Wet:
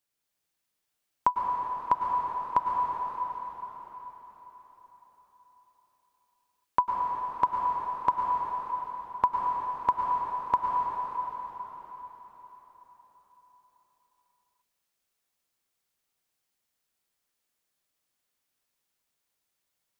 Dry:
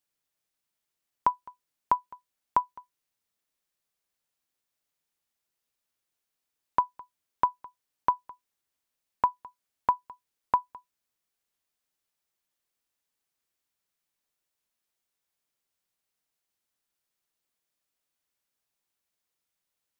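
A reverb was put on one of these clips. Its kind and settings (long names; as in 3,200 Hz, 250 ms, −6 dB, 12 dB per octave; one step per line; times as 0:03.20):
dense smooth reverb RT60 4.8 s, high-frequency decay 0.95×, pre-delay 90 ms, DRR −1 dB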